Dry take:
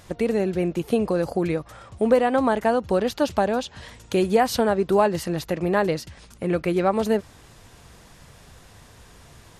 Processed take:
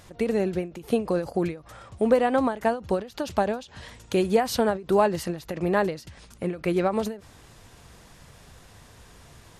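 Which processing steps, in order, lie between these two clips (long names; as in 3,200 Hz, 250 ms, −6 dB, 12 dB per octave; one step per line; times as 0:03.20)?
every ending faded ahead of time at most 160 dB per second
level −1.5 dB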